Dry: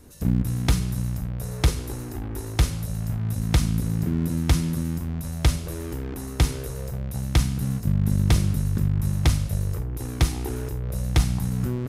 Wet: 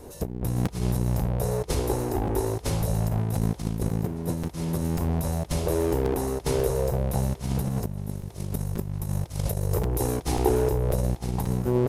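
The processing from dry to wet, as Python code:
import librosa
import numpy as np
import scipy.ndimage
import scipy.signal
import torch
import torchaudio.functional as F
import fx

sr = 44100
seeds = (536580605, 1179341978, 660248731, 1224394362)

y = fx.high_shelf(x, sr, hz=5600.0, db=6.5, at=(7.99, 10.17))
y = fx.over_compress(y, sr, threshold_db=-27.0, ratio=-0.5)
y = fx.band_shelf(y, sr, hz=600.0, db=10.0, octaves=1.7)
y = fx.echo_thinned(y, sr, ms=823, feedback_pct=78, hz=420.0, wet_db=-23.0)
y = fx.buffer_crackle(y, sr, first_s=0.65, period_s=0.54, block=256, kind='repeat')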